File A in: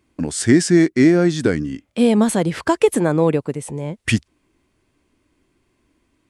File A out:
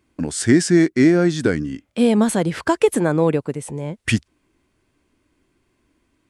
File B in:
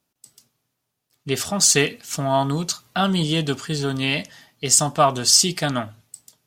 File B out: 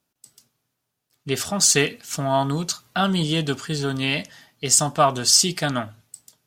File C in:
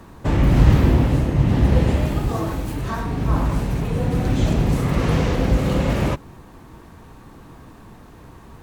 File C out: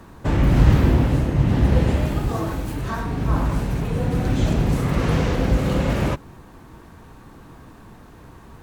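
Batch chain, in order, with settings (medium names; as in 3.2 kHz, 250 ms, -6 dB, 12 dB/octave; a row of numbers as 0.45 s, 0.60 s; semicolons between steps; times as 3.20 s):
peaking EQ 1.5 kHz +2.5 dB 0.28 oct; trim -1 dB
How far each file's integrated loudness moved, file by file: -1.0 LU, -1.0 LU, -1.0 LU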